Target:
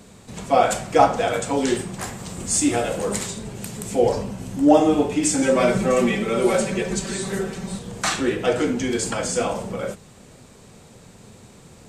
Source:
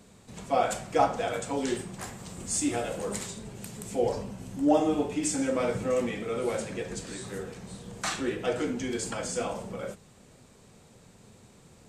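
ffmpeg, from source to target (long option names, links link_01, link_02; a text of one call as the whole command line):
ffmpeg -i in.wav -filter_complex "[0:a]asettb=1/sr,asplit=3[link_01][link_02][link_03];[link_01]atrim=end=5.424[link_04];[link_02]atrim=start=5.42:end=7.79,asetpts=PTS-STARTPTS,afade=type=in:duration=0.004:curve=qsin,afade=type=out:start_time=2.366:duration=0.004:curve=qsin,aecho=1:1:5.2:0.98,atrim=end_sample=104517[link_05];[link_03]atrim=start=7.786[link_06];[link_04][link_05]acrossfade=duration=0.004:curve1=hsin:curve2=qsin[link_07];[link_07][link_06]acrossfade=duration=0.004:curve1=qsin:curve2=hsin,volume=8.5dB" out.wav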